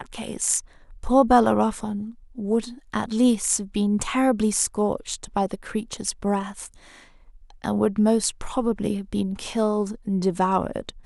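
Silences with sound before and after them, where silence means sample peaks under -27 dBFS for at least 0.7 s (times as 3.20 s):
6.66–7.64 s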